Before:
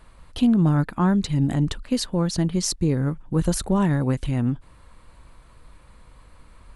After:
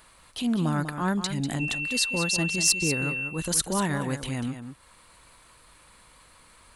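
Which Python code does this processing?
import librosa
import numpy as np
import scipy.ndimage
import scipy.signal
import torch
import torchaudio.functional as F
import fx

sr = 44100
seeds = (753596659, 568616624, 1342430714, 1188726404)

y = fx.tilt_eq(x, sr, slope=3.0)
y = fx.transient(y, sr, attack_db=-8, sustain_db=-4)
y = 10.0 ** (-8.5 / 20.0) * np.tanh(y / 10.0 ** (-8.5 / 20.0))
y = fx.dmg_tone(y, sr, hz=2700.0, level_db=-29.0, at=(1.59, 3.27), fade=0.02)
y = y + 10.0 ** (-9.5 / 20.0) * np.pad(y, (int(194 * sr / 1000.0), 0))[:len(y)]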